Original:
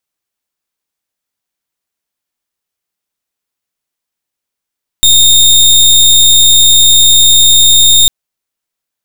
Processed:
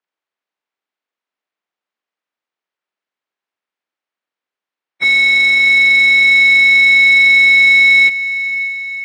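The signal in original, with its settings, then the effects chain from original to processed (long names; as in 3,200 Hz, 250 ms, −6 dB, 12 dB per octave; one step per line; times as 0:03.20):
pulse wave 3,670 Hz, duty 28% −5 dBFS 3.05 s
partials spread apart or drawn together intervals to 81%
band-pass filter 260–2,300 Hz
feedback delay with all-pass diffusion 512 ms, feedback 57%, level −14 dB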